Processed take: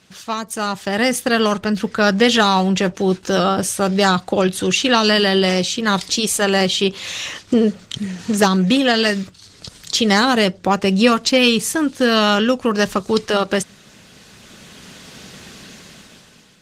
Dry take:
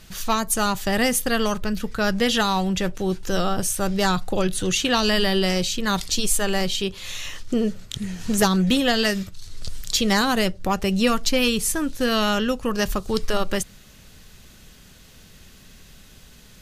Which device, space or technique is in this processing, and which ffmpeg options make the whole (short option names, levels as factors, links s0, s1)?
video call: -af "highpass=160,lowpass=7600,dynaudnorm=f=440:g=5:m=6.68,volume=0.891" -ar 48000 -c:a libopus -b:a 20k